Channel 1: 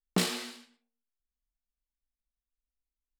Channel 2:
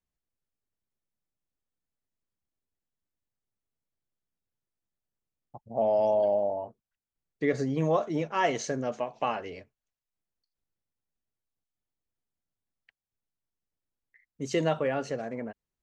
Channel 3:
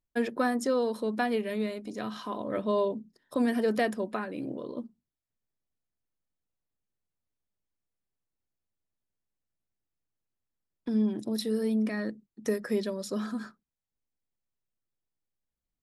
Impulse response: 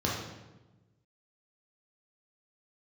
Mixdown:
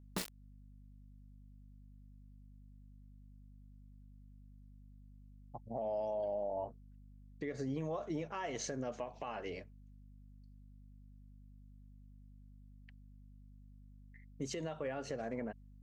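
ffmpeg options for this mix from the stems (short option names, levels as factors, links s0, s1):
-filter_complex "[0:a]acrusher=bits=3:mix=0:aa=0.000001,volume=0.398[s0];[1:a]acompressor=threshold=0.0316:ratio=6,aeval=exprs='val(0)+0.002*(sin(2*PI*50*n/s)+sin(2*PI*2*50*n/s)/2+sin(2*PI*3*50*n/s)/3+sin(2*PI*4*50*n/s)/4+sin(2*PI*5*50*n/s)/5)':c=same,volume=0.794[s1];[s0][s1]amix=inputs=2:normalize=0,alimiter=level_in=2:limit=0.0631:level=0:latency=1:release=173,volume=0.501"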